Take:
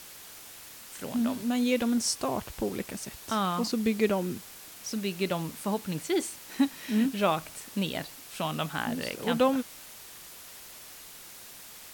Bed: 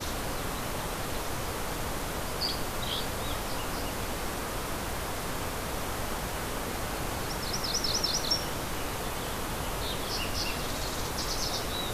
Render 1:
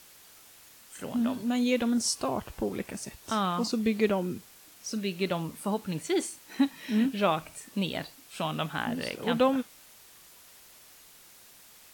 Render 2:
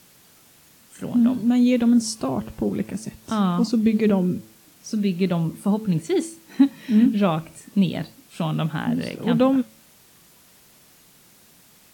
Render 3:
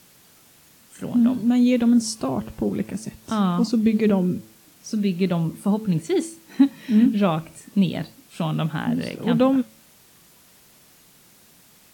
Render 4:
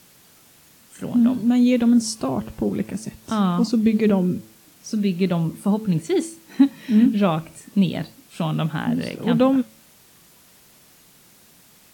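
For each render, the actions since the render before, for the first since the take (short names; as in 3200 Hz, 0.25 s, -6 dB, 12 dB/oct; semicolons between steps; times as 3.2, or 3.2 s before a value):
noise print and reduce 7 dB
bell 170 Hz +12.5 dB 2.2 oct; de-hum 109.8 Hz, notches 5
nothing audible
gain +1 dB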